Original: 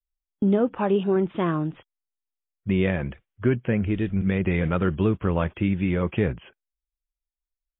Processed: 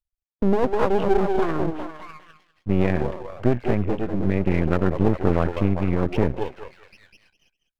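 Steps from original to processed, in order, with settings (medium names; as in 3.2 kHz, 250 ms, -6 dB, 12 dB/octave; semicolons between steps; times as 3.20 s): resonances exaggerated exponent 1.5; repeats whose band climbs or falls 200 ms, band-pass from 450 Hz, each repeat 0.7 oct, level -1 dB; half-wave rectifier; trim +4.5 dB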